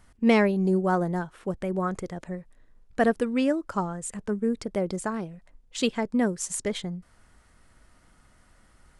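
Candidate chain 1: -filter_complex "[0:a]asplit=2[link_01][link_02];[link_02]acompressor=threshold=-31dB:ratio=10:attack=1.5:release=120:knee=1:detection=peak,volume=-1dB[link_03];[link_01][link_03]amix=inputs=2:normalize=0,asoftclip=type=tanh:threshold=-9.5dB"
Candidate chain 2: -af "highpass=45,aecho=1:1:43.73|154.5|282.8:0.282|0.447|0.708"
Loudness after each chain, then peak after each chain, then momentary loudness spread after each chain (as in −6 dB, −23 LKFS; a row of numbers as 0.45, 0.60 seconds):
−26.0, −24.5 LKFS; −11.0, −8.0 dBFS; 12, 16 LU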